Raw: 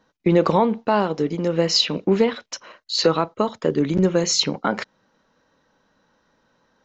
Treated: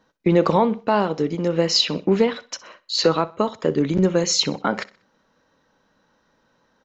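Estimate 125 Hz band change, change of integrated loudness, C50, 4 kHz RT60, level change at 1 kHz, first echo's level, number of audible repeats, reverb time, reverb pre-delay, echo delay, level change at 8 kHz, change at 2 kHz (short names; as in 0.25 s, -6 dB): 0.0 dB, 0.0 dB, none, none, 0.0 dB, -20.0 dB, 2, none, none, 63 ms, n/a, 0.0 dB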